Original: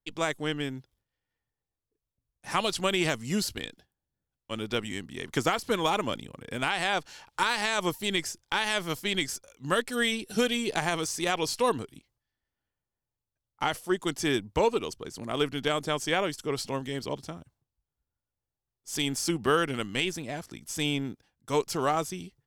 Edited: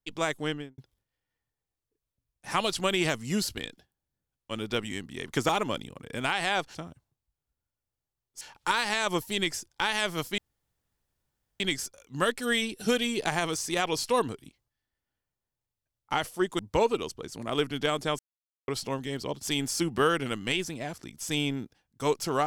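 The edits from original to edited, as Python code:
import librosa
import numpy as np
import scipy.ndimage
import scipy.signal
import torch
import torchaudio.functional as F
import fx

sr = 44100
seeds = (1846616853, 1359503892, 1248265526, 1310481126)

y = fx.studio_fade_out(x, sr, start_s=0.46, length_s=0.32)
y = fx.edit(y, sr, fx.cut(start_s=5.49, length_s=0.38),
    fx.insert_room_tone(at_s=9.1, length_s=1.22),
    fx.cut(start_s=14.09, length_s=0.32),
    fx.silence(start_s=16.01, length_s=0.49),
    fx.move(start_s=17.25, length_s=1.66, to_s=7.13), tone=tone)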